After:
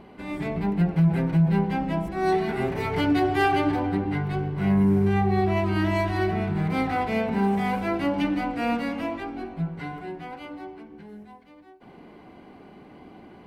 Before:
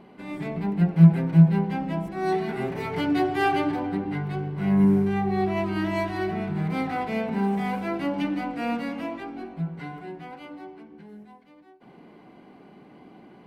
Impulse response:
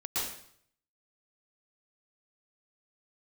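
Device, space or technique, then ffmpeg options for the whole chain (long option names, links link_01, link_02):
car stereo with a boomy subwoofer: -af "lowshelf=frequency=110:width_type=q:width=1.5:gain=7.5,alimiter=limit=-16.5dB:level=0:latency=1:release=59,volume=3dB"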